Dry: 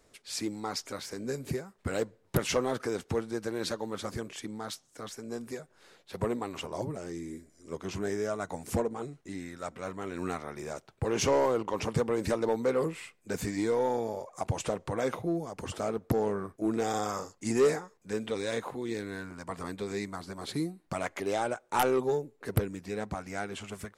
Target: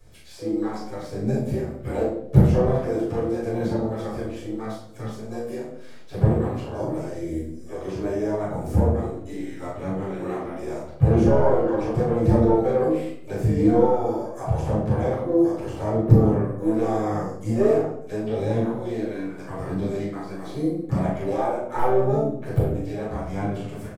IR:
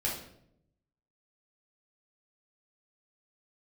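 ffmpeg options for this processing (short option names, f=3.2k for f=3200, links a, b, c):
-filter_complex "[0:a]acrossover=split=250|1100[a][b][c];[a]aphaser=in_gain=1:out_gain=1:delay=3.3:decay=0.71:speed=0.81:type=sinusoidal[d];[c]acompressor=threshold=-53dB:ratio=5[e];[d][b][e]amix=inputs=3:normalize=0,asplit=2[f][g];[g]asetrate=66075,aresample=44100,atempo=0.66742,volume=-9dB[h];[f][h]amix=inputs=2:normalize=0,asplit=2[i][j];[j]adelay=38,volume=-3.5dB[k];[i][k]amix=inputs=2:normalize=0[l];[1:a]atrim=start_sample=2205[m];[l][m]afir=irnorm=-1:irlink=0,volume=-1dB"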